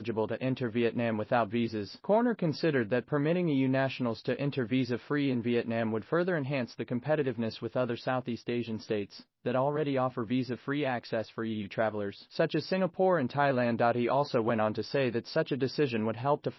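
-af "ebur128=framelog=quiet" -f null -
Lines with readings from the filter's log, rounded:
Integrated loudness:
  I:         -30.7 LUFS
  Threshold: -40.7 LUFS
Loudness range:
  LRA:         3.6 LU
  Threshold: -50.8 LUFS
  LRA low:   -32.7 LUFS
  LRA high:  -29.1 LUFS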